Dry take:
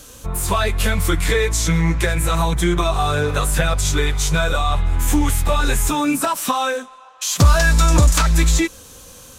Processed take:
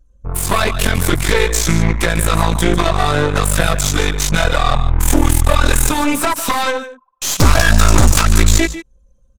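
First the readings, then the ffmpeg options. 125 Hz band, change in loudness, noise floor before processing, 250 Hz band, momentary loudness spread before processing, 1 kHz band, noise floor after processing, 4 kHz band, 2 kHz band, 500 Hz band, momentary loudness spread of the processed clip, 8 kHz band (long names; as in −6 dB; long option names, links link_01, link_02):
+2.5 dB, +3.0 dB, −42 dBFS, +3.0 dB, 6 LU, +3.5 dB, −53 dBFS, +4.0 dB, +4.0 dB, +3.5 dB, 7 LU, +4.0 dB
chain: -af "anlmdn=63.1,aecho=1:1:149:0.251,aeval=exprs='0.75*(cos(1*acos(clip(val(0)/0.75,-1,1)))-cos(1*PI/2))+0.075*(cos(5*acos(clip(val(0)/0.75,-1,1)))-cos(5*PI/2))+0.299*(cos(6*acos(clip(val(0)/0.75,-1,1)))-cos(6*PI/2))+0.0668*(cos(8*acos(clip(val(0)/0.75,-1,1)))-cos(8*PI/2))':channel_layout=same,volume=-1dB"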